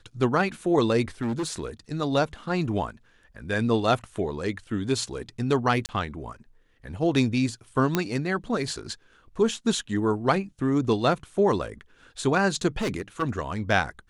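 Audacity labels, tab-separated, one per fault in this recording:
1.210000	1.650000	clipping −24.5 dBFS
5.860000	5.890000	drop-out 29 ms
7.950000	7.950000	click −8 dBFS
12.810000	13.230000	clipping −23.5 dBFS

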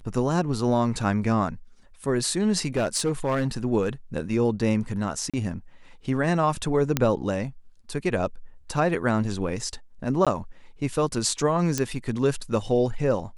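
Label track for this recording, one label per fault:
2.760000	3.480000	clipping −19 dBFS
5.300000	5.340000	drop-out 36 ms
6.970000	6.970000	click −6 dBFS
10.250000	10.270000	drop-out 16 ms
11.780000	11.780000	click −10 dBFS

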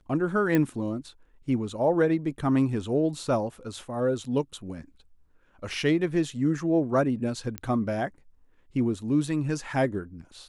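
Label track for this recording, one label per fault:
0.550000	0.550000	click −12 dBFS
7.580000	7.580000	click −17 dBFS

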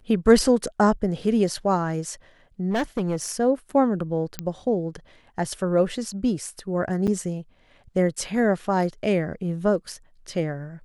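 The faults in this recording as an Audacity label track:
2.700000	3.280000	clipping −20 dBFS
4.390000	4.390000	click −11 dBFS
7.070000	7.080000	drop-out 7.2 ms

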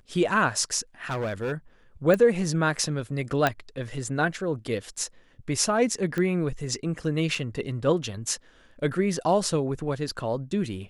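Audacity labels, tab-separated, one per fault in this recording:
1.100000	1.530000	clipping −25 dBFS
2.140000	2.140000	click −12 dBFS
3.470000	3.470000	click −8 dBFS
6.180000	6.180000	click −16 dBFS
7.350000	7.350000	drop-out 4.3 ms

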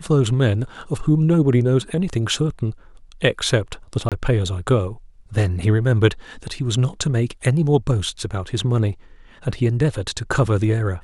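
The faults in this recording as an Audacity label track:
4.090000	4.120000	drop-out 27 ms

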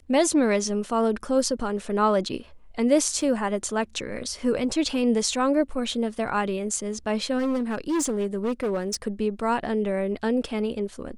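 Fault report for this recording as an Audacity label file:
3.210000	3.210000	drop-out 3.3 ms
7.380000	8.950000	clipping −21.5 dBFS

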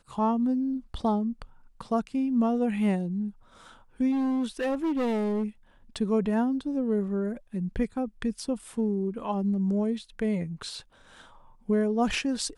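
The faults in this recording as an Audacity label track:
4.110000	5.440000	clipping −24 dBFS

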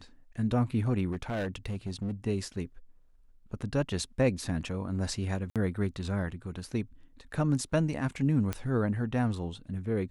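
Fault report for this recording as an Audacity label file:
1.110000	2.110000	clipping −29 dBFS
5.500000	5.560000	drop-out 57 ms
8.530000	8.530000	click −17 dBFS

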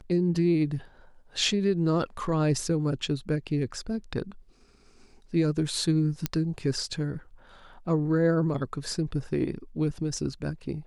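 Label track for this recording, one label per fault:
6.260000	6.260000	click −10 dBFS

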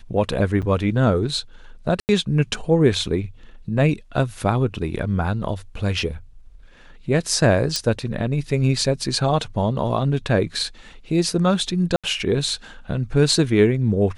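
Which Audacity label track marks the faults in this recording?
0.620000	0.630000	drop-out 6.5 ms
2.000000	2.090000	drop-out 89 ms
7.760000	7.760000	click −8 dBFS
11.960000	12.040000	drop-out 76 ms

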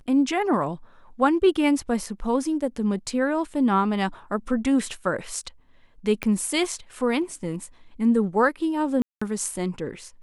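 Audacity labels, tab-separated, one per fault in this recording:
6.230000	6.230000	click −12 dBFS
9.020000	9.210000	drop-out 195 ms

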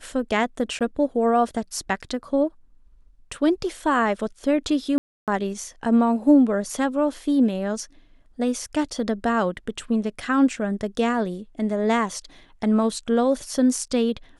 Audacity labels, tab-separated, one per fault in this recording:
0.790000	0.810000	drop-out 17 ms
4.980000	5.280000	drop-out 297 ms

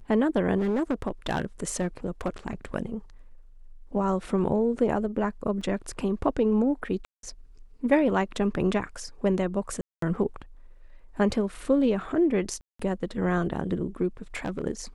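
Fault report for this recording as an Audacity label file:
0.580000	2.740000	clipping −21 dBFS
5.610000	5.610000	drop-out 3.7 ms
7.050000	7.230000	drop-out 182 ms
9.810000	10.020000	drop-out 213 ms
12.610000	12.790000	drop-out 184 ms
14.360000	14.640000	clipping −25 dBFS

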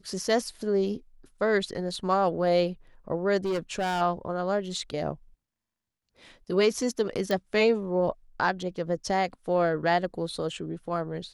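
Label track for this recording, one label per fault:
3.440000	4.020000	clipping −24.5 dBFS
7.310000	7.310000	click −16 dBFS

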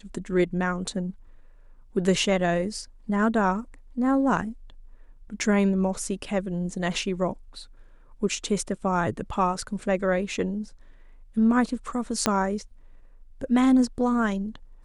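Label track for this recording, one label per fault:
12.260000	12.260000	click −6 dBFS

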